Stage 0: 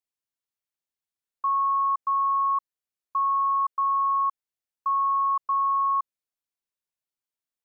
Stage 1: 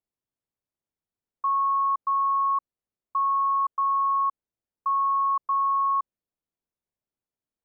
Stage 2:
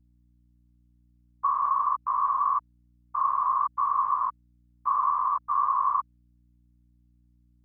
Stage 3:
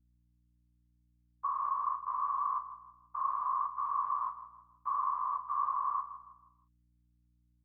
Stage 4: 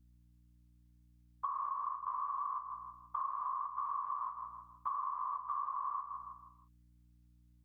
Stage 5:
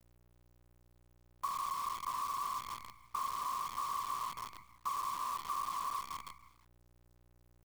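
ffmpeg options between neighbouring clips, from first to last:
-af "tiltshelf=f=1100:g=9.5"
-af "afftfilt=real='hypot(re,im)*cos(2*PI*random(0))':imag='hypot(re,im)*sin(2*PI*random(1))':win_size=512:overlap=0.75,aeval=exprs='val(0)+0.000501*(sin(2*PI*60*n/s)+sin(2*PI*2*60*n/s)/2+sin(2*PI*3*60*n/s)/3+sin(2*PI*4*60*n/s)/4+sin(2*PI*5*60*n/s)/5)':c=same,volume=1.68"
-filter_complex "[0:a]asplit=2[s0][s1];[s1]adelay=35,volume=0.335[s2];[s0][s2]amix=inputs=2:normalize=0,asplit=2[s3][s4];[s4]adelay=160,lowpass=f=1800:p=1,volume=0.266,asplit=2[s5][s6];[s6]adelay=160,lowpass=f=1800:p=1,volume=0.43,asplit=2[s7][s8];[s8]adelay=160,lowpass=f=1800:p=1,volume=0.43,asplit=2[s9][s10];[s10]adelay=160,lowpass=f=1800:p=1,volume=0.43[s11];[s3][s5][s7][s9][s11]amix=inputs=5:normalize=0,volume=0.355"
-af "acompressor=threshold=0.00891:ratio=12,volume=2"
-af "acrusher=bits=8:dc=4:mix=0:aa=0.000001"

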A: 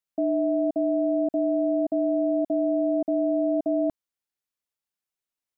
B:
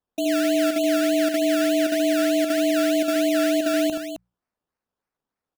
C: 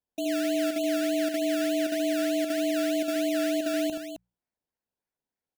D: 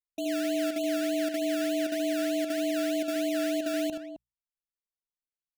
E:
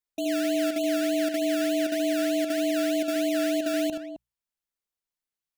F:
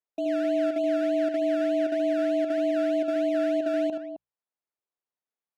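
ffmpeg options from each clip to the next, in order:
-af "acrusher=samples=17:mix=1:aa=0.000001:lfo=1:lforange=10.2:lforate=3.3,bandreject=f=60:t=h:w=6,bandreject=f=120:t=h:w=6,bandreject=f=180:t=h:w=6,aecho=1:1:76|264:0.501|0.398"
-af "equalizer=f=1200:w=5.5:g=-11,volume=0.501"
-af "anlmdn=0.631,volume=0.794"
-af "acontrast=45,volume=0.75"
-af "bandpass=f=620:t=q:w=0.76:csg=0,volume=1.33"

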